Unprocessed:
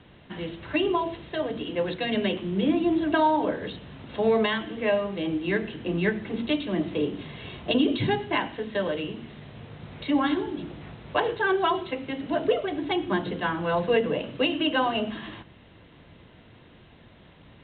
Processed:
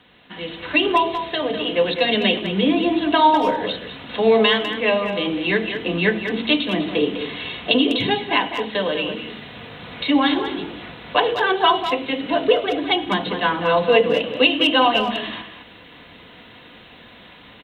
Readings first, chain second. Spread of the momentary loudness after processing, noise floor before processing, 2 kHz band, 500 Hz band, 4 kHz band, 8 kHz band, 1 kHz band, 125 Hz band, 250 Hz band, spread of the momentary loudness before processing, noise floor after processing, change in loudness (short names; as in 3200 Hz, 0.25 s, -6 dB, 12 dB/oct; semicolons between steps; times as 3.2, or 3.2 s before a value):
14 LU, -53 dBFS, +8.5 dB, +6.5 dB, +12.5 dB, n/a, +8.5 dB, +2.0 dB, +4.5 dB, 14 LU, -45 dBFS, +7.5 dB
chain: tilt +2.5 dB/oct; comb 4.1 ms, depth 33%; de-hum 78.4 Hz, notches 10; dynamic EQ 1600 Hz, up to -5 dB, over -42 dBFS, Q 1.5; AGC gain up to 8.5 dB; speakerphone echo 0.2 s, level -8 dB; gain +1 dB